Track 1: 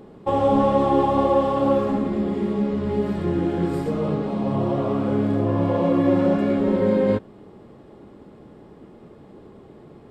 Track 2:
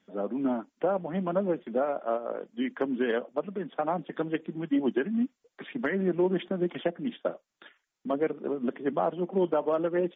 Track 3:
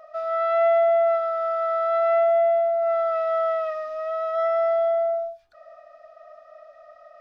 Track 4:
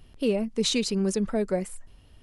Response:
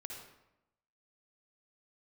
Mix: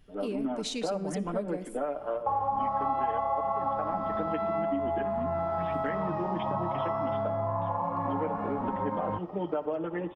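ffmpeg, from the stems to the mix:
-filter_complex "[0:a]firequalizer=gain_entry='entry(110,0);entry(360,-18);entry(880,15);entry(1500,-1);entry(3400,-17)':delay=0.05:min_phase=1,adelay=2000,volume=-5.5dB[link_01];[1:a]aecho=1:1:6.7:0.72,volume=-5dB,asplit=2[link_02][link_03];[link_03]volume=-10dB[link_04];[2:a]adelay=2450,volume=-6dB[link_05];[3:a]volume=-10.5dB,asplit=2[link_06][link_07];[link_07]volume=-10dB[link_08];[4:a]atrim=start_sample=2205[link_09];[link_04][link_08]amix=inputs=2:normalize=0[link_10];[link_10][link_09]afir=irnorm=-1:irlink=0[link_11];[link_01][link_02][link_05][link_06][link_11]amix=inputs=5:normalize=0,acompressor=threshold=-27dB:ratio=5"

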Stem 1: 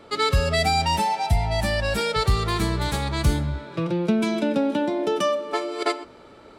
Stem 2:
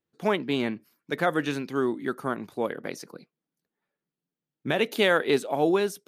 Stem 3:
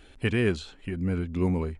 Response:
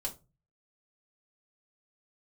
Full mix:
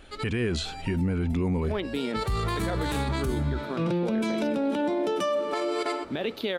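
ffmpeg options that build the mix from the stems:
-filter_complex "[0:a]adynamicequalizer=threshold=0.00708:dfrequency=4800:dqfactor=1.1:tfrequency=4800:tqfactor=1.1:attack=5:release=100:ratio=0.375:range=2.5:mode=cutabove:tftype=bell,volume=-5dB[link_01];[1:a]equalizer=frequency=250:width_type=o:width=1:gain=6,equalizer=frequency=500:width_type=o:width=1:gain=5,equalizer=frequency=4000:width_type=o:width=1:gain=10,equalizer=frequency=8000:width_type=o:width=1:gain=-12,adelay=1450,volume=-6.5dB[link_02];[2:a]volume=2dB,asplit=2[link_03][link_04];[link_04]apad=whole_len=290400[link_05];[link_01][link_05]sidechaincompress=threshold=-54dB:ratio=5:attack=16:release=390[link_06];[link_06][link_03]amix=inputs=2:normalize=0,dynaudnorm=framelen=150:gausssize=5:maxgain=8.5dB,alimiter=limit=-16.5dB:level=0:latency=1:release=20,volume=0dB[link_07];[link_02][link_07]amix=inputs=2:normalize=0,alimiter=limit=-20dB:level=0:latency=1:release=33"

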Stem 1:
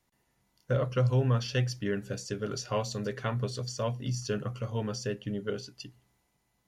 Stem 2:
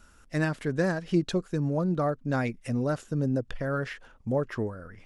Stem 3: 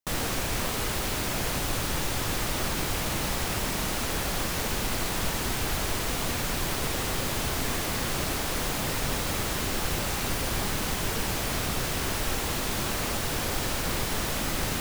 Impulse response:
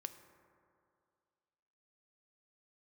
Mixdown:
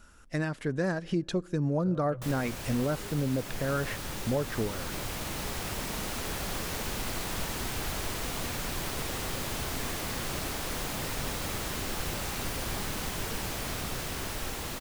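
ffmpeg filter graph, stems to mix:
-filter_complex "[0:a]afwtdn=0.00891,adelay=1150,volume=-16dB[link_01];[1:a]volume=0dB,asplit=2[link_02][link_03];[link_03]volume=-17.5dB[link_04];[2:a]dynaudnorm=framelen=440:gausssize=13:maxgain=4.5dB,adelay=2150,volume=-9.5dB[link_05];[3:a]atrim=start_sample=2205[link_06];[link_04][link_06]afir=irnorm=-1:irlink=0[link_07];[link_01][link_02][link_05][link_07]amix=inputs=4:normalize=0,alimiter=limit=-19.5dB:level=0:latency=1:release=310"

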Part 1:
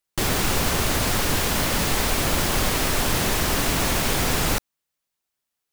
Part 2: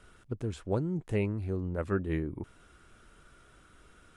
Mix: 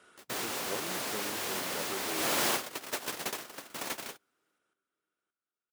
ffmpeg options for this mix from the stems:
ffmpeg -i stem1.wav -i stem2.wav -filter_complex "[0:a]alimiter=limit=-14dB:level=0:latency=1:release=444,volume=-1dB,afade=type=in:start_time=2.09:duration=0.23:silence=0.446684[link_01];[1:a]acompressor=threshold=-37dB:ratio=3,volume=0.5dB,asplit=3[link_02][link_03][link_04];[link_03]volume=-21dB[link_05];[link_04]apad=whole_len=252334[link_06];[link_01][link_06]sidechaingate=range=-56dB:threshold=-54dB:ratio=16:detection=peak[link_07];[link_05]aecho=0:1:571|1142|1713|2284|2855:1|0.38|0.144|0.0549|0.0209[link_08];[link_07][link_02][link_08]amix=inputs=3:normalize=0,highpass=320" out.wav

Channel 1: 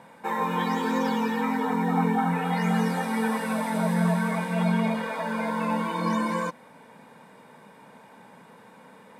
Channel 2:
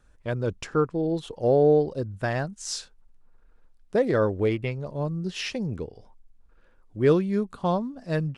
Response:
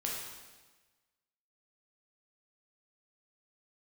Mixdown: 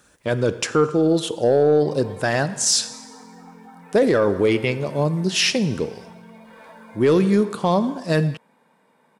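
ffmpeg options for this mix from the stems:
-filter_complex "[0:a]acompressor=threshold=-31dB:ratio=6,adelay=1500,volume=-15.5dB[link_01];[1:a]highshelf=frequency=4200:gain=10.5,volume=3dB,asplit=3[link_02][link_03][link_04];[link_03]volume=-15dB[link_05];[link_04]apad=whole_len=471731[link_06];[link_01][link_06]sidechaincompress=threshold=-20dB:ratio=8:attack=16:release=234[link_07];[2:a]atrim=start_sample=2205[link_08];[link_05][link_08]afir=irnorm=-1:irlink=0[link_09];[link_07][link_02][link_09]amix=inputs=3:normalize=0,highpass=150,acontrast=38,alimiter=limit=-9.5dB:level=0:latency=1:release=12"

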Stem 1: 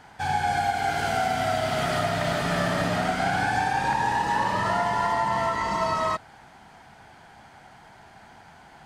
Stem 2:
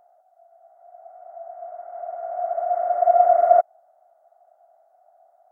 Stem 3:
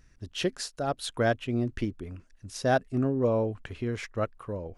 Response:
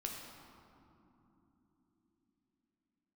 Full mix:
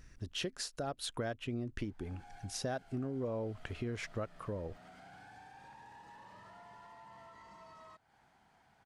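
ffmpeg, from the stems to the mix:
-filter_complex "[0:a]asoftclip=type=tanh:threshold=-19dB,acompressor=threshold=-37dB:ratio=2.5,adelay=1800,volume=-18.5dB[link_01];[2:a]acompressor=threshold=-29dB:ratio=3,volume=2.5dB[link_02];[link_01]alimiter=level_in=25dB:limit=-24dB:level=0:latency=1:release=170,volume=-25dB,volume=0dB[link_03];[link_02][link_03]amix=inputs=2:normalize=0,acompressor=threshold=-42dB:ratio=2"

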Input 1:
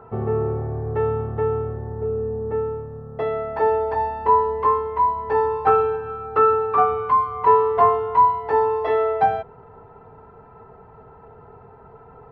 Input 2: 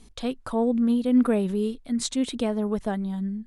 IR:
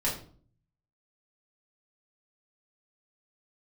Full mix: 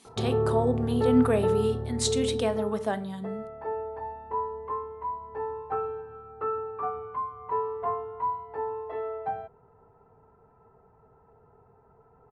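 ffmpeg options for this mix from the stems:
-filter_complex "[0:a]lowpass=frequency=1600:poles=1,adelay=50,volume=-3dB,afade=type=out:start_time=2.29:duration=0.49:silence=0.316228[link_01];[1:a]highpass=360,volume=0.5dB,asplit=2[link_02][link_03];[link_03]volume=-16dB[link_04];[2:a]atrim=start_sample=2205[link_05];[link_04][link_05]afir=irnorm=-1:irlink=0[link_06];[link_01][link_02][link_06]amix=inputs=3:normalize=0"

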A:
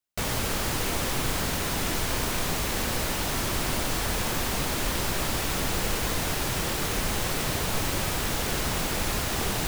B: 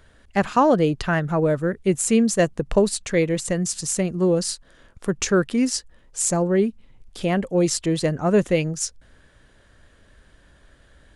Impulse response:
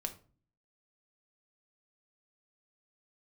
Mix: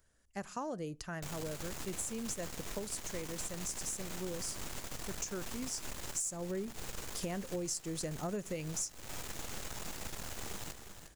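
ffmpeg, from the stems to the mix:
-filter_complex "[0:a]equalizer=frequency=7000:width_type=o:width=0.44:gain=7,aeval=exprs='max(val(0),0)':channel_layout=same,adelay=1050,volume=-12dB,asplit=2[link_01][link_02];[link_02]volume=-10.5dB[link_03];[1:a]aexciter=amount=4.2:drive=7.5:freq=5200,equalizer=frequency=9300:width_type=o:width=0.28:gain=-7,volume=-9.5dB,afade=type=in:start_time=5.95:duration=0.23:silence=0.266073,asplit=2[link_04][link_05];[link_05]volume=-15dB[link_06];[2:a]atrim=start_sample=2205[link_07];[link_06][link_07]afir=irnorm=-1:irlink=0[link_08];[link_03]aecho=0:1:357|714|1071|1428:1|0.24|0.0576|0.0138[link_09];[link_01][link_04][link_08][link_09]amix=inputs=4:normalize=0,acompressor=threshold=-35dB:ratio=10"

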